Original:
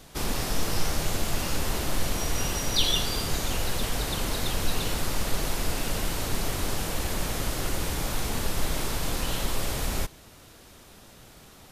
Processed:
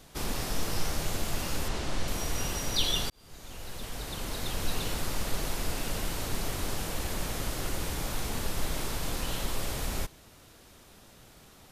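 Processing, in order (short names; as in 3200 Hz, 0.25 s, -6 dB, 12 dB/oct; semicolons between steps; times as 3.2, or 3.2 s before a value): 1.68–2.08 LPF 7100 Hz 12 dB/oct; 3.1–4.72 fade in; gain -4 dB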